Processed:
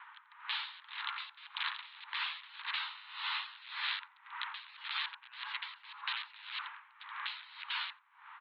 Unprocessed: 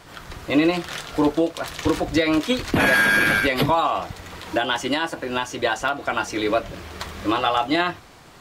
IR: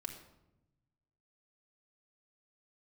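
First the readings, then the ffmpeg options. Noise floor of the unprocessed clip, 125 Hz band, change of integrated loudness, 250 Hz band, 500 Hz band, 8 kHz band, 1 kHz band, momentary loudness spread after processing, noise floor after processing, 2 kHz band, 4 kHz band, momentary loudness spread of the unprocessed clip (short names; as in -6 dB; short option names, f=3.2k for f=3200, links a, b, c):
-46 dBFS, under -40 dB, -18.5 dB, under -40 dB, under -40 dB, under -40 dB, -20.0 dB, 8 LU, -64 dBFS, -18.5 dB, -10.0 dB, 13 LU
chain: -filter_complex "[0:a]acrossover=split=2500[a][b];[a]aeval=exprs='(mod(10.6*val(0)+1,2)-1)/10.6':c=same[c];[b]acrusher=bits=5:mix=0:aa=0.000001[d];[c][d]amix=inputs=2:normalize=0,afftfilt=real='re*lt(hypot(re,im),0.0708)':imag='im*lt(hypot(re,im),0.0708)':win_size=1024:overlap=0.75,asuperpass=centerf=1900:order=20:qfactor=0.6,asplit=2[e][f];[f]adelay=87,lowpass=f=1.3k:p=1,volume=-12dB,asplit=2[g][h];[h]adelay=87,lowpass=f=1.3k:p=1,volume=0.34,asplit=2[i][j];[j]adelay=87,lowpass=f=1.3k:p=1,volume=0.34[k];[e][g][i][k]amix=inputs=4:normalize=0,aeval=exprs='val(0)*pow(10,-20*(0.5-0.5*cos(2*PI*1.8*n/s))/20)':c=same,volume=1.5dB"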